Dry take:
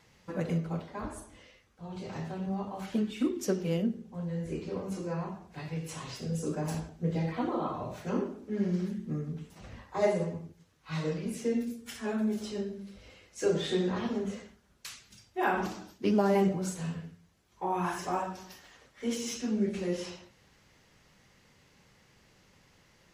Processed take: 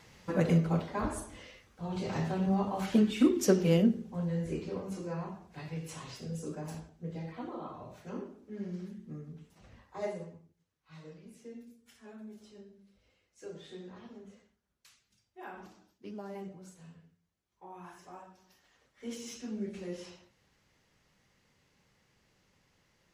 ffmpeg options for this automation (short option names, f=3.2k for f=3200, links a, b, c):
-af "volume=14.5dB,afade=t=out:st=3.8:d=1.05:silence=0.398107,afade=t=out:st=5.85:d=1.05:silence=0.473151,afade=t=out:st=10.06:d=0.4:silence=0.398107,afade=t=in:st=18.42:d=0.71:silence=0.334965"